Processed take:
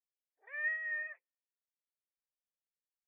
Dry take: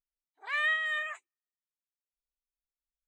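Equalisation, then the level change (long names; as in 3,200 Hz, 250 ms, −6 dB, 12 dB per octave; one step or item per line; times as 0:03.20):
formant resonators in series e
low-shelf EQ 440 Hz −4.5 dB
high-shelf EQ 3,200 Hz −9.5 dB
+2.0 dB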